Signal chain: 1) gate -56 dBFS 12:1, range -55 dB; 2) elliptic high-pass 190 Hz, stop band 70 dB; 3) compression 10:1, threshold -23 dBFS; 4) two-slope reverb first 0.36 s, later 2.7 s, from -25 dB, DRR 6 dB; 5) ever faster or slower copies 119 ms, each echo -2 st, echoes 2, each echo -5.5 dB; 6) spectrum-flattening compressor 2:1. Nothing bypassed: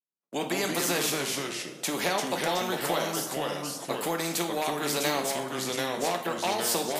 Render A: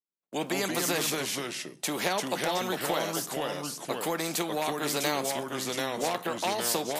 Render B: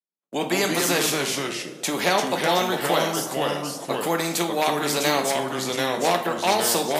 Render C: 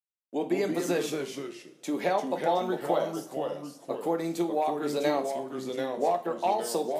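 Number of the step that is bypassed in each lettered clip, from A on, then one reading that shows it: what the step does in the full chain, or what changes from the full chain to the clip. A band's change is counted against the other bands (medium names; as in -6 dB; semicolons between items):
4, loudness change -1.0 LU; 3, mean gain reduction 2.0 dB; 6, 8 kHz band -10.5 dB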